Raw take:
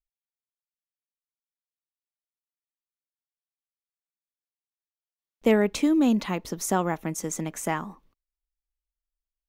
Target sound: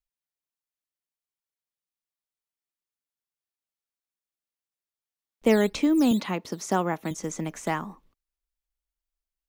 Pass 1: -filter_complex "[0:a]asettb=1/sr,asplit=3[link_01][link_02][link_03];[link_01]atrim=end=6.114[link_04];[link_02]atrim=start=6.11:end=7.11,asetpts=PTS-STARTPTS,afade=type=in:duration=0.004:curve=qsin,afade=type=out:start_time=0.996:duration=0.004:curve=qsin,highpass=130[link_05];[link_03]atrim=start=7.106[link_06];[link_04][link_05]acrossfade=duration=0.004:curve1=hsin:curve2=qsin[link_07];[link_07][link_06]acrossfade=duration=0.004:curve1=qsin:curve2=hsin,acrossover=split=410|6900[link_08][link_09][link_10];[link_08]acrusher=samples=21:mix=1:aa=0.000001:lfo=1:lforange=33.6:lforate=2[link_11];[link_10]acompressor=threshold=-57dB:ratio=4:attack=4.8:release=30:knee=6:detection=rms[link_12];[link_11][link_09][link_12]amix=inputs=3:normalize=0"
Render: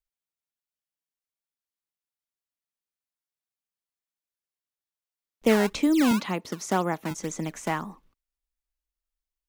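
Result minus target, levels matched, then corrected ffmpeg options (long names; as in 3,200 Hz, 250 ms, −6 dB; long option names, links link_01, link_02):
sample-and-hold swept by an LFO: distortion +11 dB
-filter_complex "[0:a]asettb=1/sr,asplit=3[link_01][link_02][link_03];[link_01]atrim=end=6.114[link_04];[link_02]atrim=start=6.11:end=7.11,asetpts=PTS-STARTPTS,afade=type=in:duration=0.004:curve=qsin,afade=type=out:start_time=0.996:duration=0.004:curve=qsin,highpass=130[link_05];[link_03]atrim=start=7.106[link_06];[link_04][link_05]acrossfade=duration=0.004:curve1=hsin:curve2=qsin[link_07];[link_07][link_06]acrossfade=duration=0.004:curve1=qsin:curve2=hsin,acrossover=split=410|6900[link_08][link_09][link_10];[link_08]acrusher=samples=7:mix=1:aa=0.000001:lfo=1:lforange=11.2:lforate=2[link_11];[link_10]acompressor=threshold=-57dB:ratio=4:attack=4.8:release=30:knee=6:detection=rms[link_12];[link_11][link_09][link_12]amix=inputs=3:normalize=0"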